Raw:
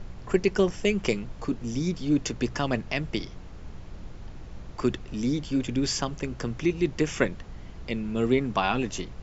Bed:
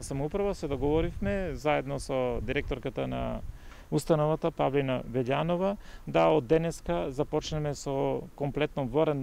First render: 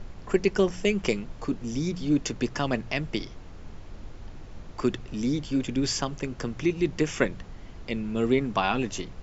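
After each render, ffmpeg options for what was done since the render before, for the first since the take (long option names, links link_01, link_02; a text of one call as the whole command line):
ffmpeg -i in.wav -af "bandreject=frequency=60:width_type=h:width=4,bandreject=frequency=120:width_type=h:width=4,bandreject=frequency=180:width_type=h:width=4" out.wav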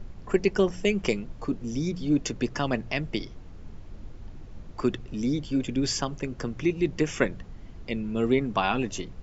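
ffmpeg -i in.wav -af "afftdn=noise_reduction=6:noise_floor=-44" out.wav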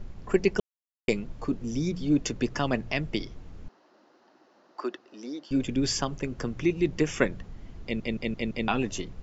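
ffmpeg -i in.wav -filter_complex "[0:a]asettb=1/sr,asplit=3[link_01][link_02][link_03];[link_01]atrim=end=3.684[link_04];[link_02]atrim=start=3.68:end=5.51,asetpts=PTS-STARTPTS,afade=type=in:duration=0.004:curve=qsin,afade=type=out:start_time=1.826:duration=0.004:curve=qsin,highpass=frequency=360:width=0.5412,highpass=frequency=360:width=1.3066,equalizer=frequency=450:width_type=q:width=4:gain=-9,equalizer=frequency=2300:width_type=q:width=4:gain=-10,equalizer=frequency=3400:width_type=q:width=4:gain=-8,lowpass=frequency=5300:width=0.5412,lowpass=frequency=5300:width=1.3066[link_05];[link_03]atrim=start=5.506[link_06];[link_04][link_05]acrossfade=duration=0.004:curve1=hsin:curve2=qsin[link_07];[link_07][link_06]acrossfade=duration=0.004:curve1=qsin:curve2=hsin,asplit=8[link_08][link_09][link_10][link_11][link_12][link_13][link_14][link_15];[link_08]atrim=end=0.6,asetpts=PTS-STARTPTS,afade=type=out:start_time=0.596:duration=0.004:curve=hsin[link_16];[link_09]atrim=start=0.6:end=1.08,asetpts=PTS-STARTPTS,volume=0[link_17];[link_10]atrim=start=1.08:end=8.002,asetpts=PTS-STARTPTS,afade=type=in:duration=0.004:curve=hsin[link_18];[link_11]atrim=start=7.828:end=8.002[link_19];[link_12]atrim=start=7.828:end=8.002[link_20];[link_13]atrim=start=7.828:end=8.002[link_21];[link_14]atrim=start=7.828:end=8.002[link_22];[link_15]atrim=start=8.678[link_23];[link_16][link_17][link_18]concat=n=3:v=0:a=1[link_24];[link_24][link_19]acrossfade=duration=0.004:curve1=hsin:curve2=hsin[link_25];[link_25][link_20]acrossfade=duration=0.004:curve1=hsin:curve2=hsin[link_26];[link_26][link_21]acrossfade=duration=0.004:curve1=hsin:curve2=hsin[link_27];[link_27][link_22]acrossfade=duration=0.004:curve1=hsin:curve2=hsin[link_28];[link_28][link_23]acrossfade=duration=0.004:curve1=hsin:curve2=hsin" out.wav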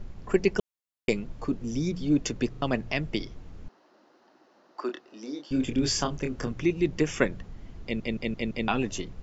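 ffmpeg -i in.wav -filter_complex "[0:a]asettb=1/sr,asplit=3[link_01][link_02][link_03];[link_01]atrim=end=4.864[link_04];[link_02]atrim=start=4.86:end=6.52,asetpts=PTS-STARTPTS,afade=type=in:duration=0.004:curve=qsin,afade=type=out:start_time=1.656:duration=0.004:curve=qsin,asplit=2[link_05][link_06];[link_06]adelay=27,volume=-5.5dB[link_07];[link_05][link_07]amix=inputs=2:normalize=0,atrim=end_sample=73206[link_08];[link_03]atrim=start=6.516[link_09];[link_04][link_08]acrossfade=duration=0.004:curve1=hsin:curve2=qsin[link_10];[link_10][link_09]acrossfade=duration=0.004:curve1=qsin:curve2=hsin,asplit=4[link_11][link_12][link_13][link_14];[link_11]atrim=end=2.542[link_15];[link_12]atrim=start=2.498:end=2.542[link_16];[link_13]atrim=start=2.498:end=2.542[link_17];[link_14]atrim=start=2.618[link_18];[link_15][link_16]acrossfade=duration=0.004:curve1=hsin:curve2=hsin[link_19];[link_19][link_17]acrossfade=duration=0.004:curve1=hsin:curve2=hsin[link_20];[link_20][link_18]acrossfade=duration=0.004:curve1=hsin:curve2=hsin" out.wav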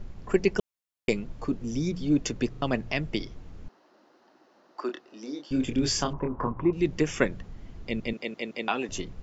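ffmpeg -i in.wav -filter_complex "[0:a]asettb=1/sr,asplit=3[link_01][link_02][link_03];[link_01]atrim=end=6.134[link_04];[link_02]atrim=start=6.13:end=6.73,asetpts=PTS-STARTPTS,afade=type=in:duration=0.004:curve=qsin,afade=type=out:start_time=0.596:duration=0.004:curve=qsin,lowpass=frequency=1000:width_type=q:width=10[link_05];[link_03]atrim=start=6.726[link_06];[link_04][link_05]acrossfade=duration=0.004:curve1=hsin:curve2=qsin[link_07];[link_07][link_06]acrossfade=duration=0.004:curve1=qsin:curve2=hsin,asettb=1/sr,asplit=3[link_08][link_09][link_10];[link_08]atrim=end=8.134[link_11];[link_09]atrim=start=8.13:end=8.89,asetpts=PTS-STARTPTS,afade=type=in:duration=0.004:curve=qsin,afade=type=out:start_time=0.756:duration=0.004:curve=qsin,highpass=330[link_12];[link_10]atrim=start=8.886[link_13];[link_11][link_12]acrossfade=duration=0.004:curve1=hsin:curve2=qsin[link_14];[link_14][link_13]acrossfade=duration=0.004:curve1=qsin:curve2=hsin" out.wav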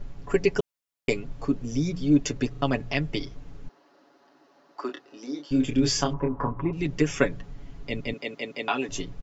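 ffmpeg -i in.wav -af "aecho=1:1:7.1:0.65" out.wav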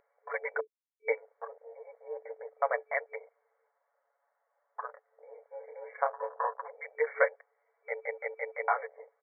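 ffmpeg -i in.wav -af "afwtdn=0.0141,afftfilt=real='re*between(b*sr/4096,440,2300)':imag='im*between(b*sr/4096,440,2300)':win_size=4096:overlap=0.75" out.wav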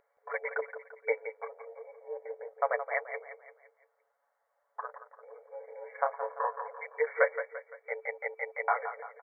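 ffmpeg -i in.wav -af "aecho=1:1:171|342|513|684|855:0.299|0.134|0.0605|0.0272|0.0122" out.wav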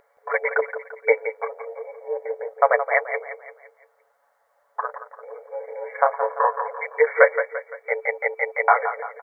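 ffmpeg -i in.wav -af "volume=12dB,alimiter=limit=-1dB:level=0:latency=1" out.wav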